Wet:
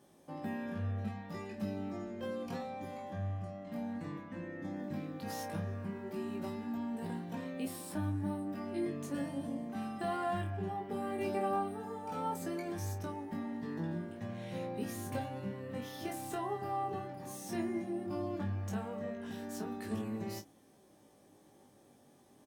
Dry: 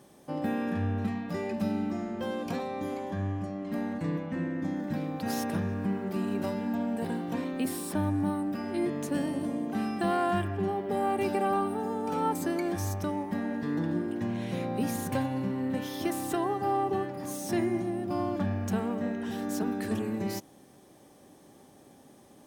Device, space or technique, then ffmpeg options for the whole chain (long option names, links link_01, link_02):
double-tracked vocal: -filter_complex "[0:a]asplit=2[link_01][link_02];[link_02]adelay=29,volume=-10dB[link_03];[link_01][link_03]amix=inputs=2:normalize=0,flanger=delay=18:depth=3.9:speed=0.15,volume=-5dB"